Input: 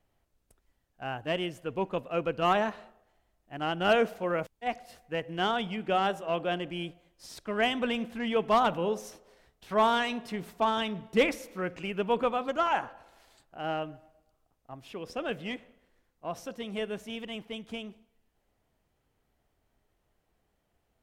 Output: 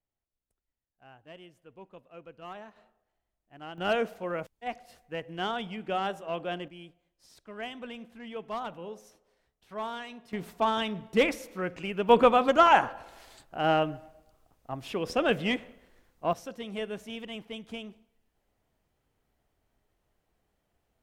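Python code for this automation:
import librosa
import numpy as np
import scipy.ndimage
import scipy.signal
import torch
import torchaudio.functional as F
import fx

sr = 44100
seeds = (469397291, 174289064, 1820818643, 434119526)

y = fx.gain(x, sr, db=fx.steps((0.0, -18.0), (2.76, -11.5), (3.78, -3.5), (6.68, -11.5), (10.33, 0.5), (12.09, 8.0), (16.33, -1.0)))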